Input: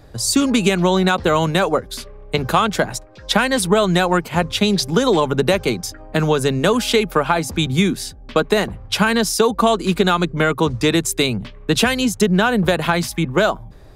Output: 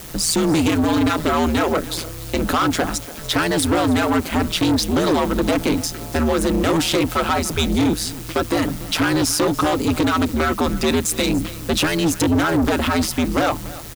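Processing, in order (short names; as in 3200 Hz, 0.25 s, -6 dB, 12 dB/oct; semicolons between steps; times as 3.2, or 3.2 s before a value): in parallel at +2 dB: limiter -12 dBFS, peak gain reduction 9.5 dB; on the sum: added noise white -35 dBFS; ring modulator 81 Hz; small resonant body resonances 290/1300 Hz, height 7 dB; soft clip -13.5 dBFS, distortion -8 dB; on a send: echo 0.289 s -18 dB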